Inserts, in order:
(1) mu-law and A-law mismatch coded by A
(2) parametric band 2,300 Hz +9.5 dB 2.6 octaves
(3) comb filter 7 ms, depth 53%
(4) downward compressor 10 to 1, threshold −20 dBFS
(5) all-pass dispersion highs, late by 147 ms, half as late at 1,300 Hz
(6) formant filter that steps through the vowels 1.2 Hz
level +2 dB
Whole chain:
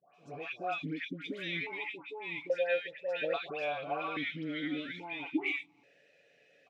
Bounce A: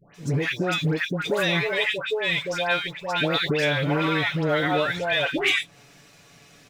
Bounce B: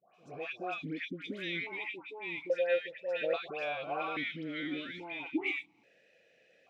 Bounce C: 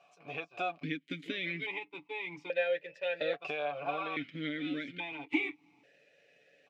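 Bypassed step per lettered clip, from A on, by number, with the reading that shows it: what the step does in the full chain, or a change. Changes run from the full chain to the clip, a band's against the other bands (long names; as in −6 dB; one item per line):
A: 6, 125 Hz band +10.0 dB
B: 3, 500 Hz band +2.0 dB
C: 5, change in crest factor +2.0 dB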